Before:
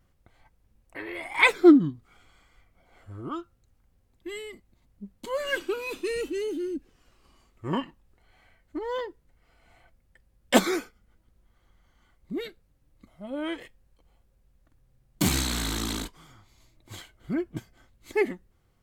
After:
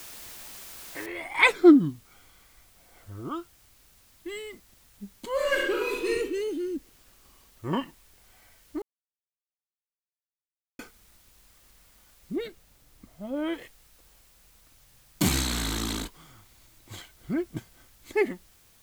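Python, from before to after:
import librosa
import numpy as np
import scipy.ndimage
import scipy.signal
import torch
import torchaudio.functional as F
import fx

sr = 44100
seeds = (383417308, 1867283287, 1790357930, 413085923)

y = fx.noise_floor_step(x, sr, seeds[0], at_s=1.06, before_db=-44, after_db=-60, tilt_db=0.0)
y = fx.reverb_throw(y, sr, start_s=5.32, length_s=0.79, rt60_s=0.82, drr_db=-2.0)
y = fx.tilt_shelf(y, sr, db=3.0, hz=970.0, at=(12.36, 13.54))
y = fx.edit(y, sr, fx.silence(start_s=8.82, length_s=1.97), tone=tone)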